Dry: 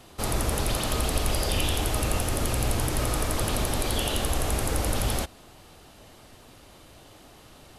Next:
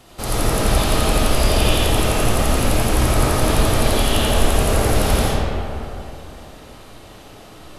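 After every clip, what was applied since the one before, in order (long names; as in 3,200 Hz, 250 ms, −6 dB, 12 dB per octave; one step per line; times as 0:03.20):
comb and all-pass reverb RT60 2.8 s, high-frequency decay 0.5×, pre-delay 30 ms, DRR −7 dB
level +2 dB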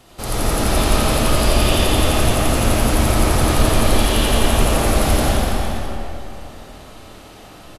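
bouncing-ball delay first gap 180 ms, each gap 0.85×, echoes 5
level −1 dB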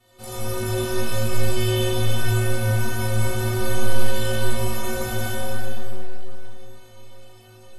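stiff-string resonator 110 Hz, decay 0.49 s, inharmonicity 0.03
flutter between parallel walls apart 3.2 metres, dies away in 0.36 s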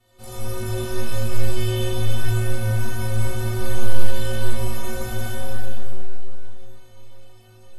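low-shelf EQ 95 Hz +8 dB
level −4 dB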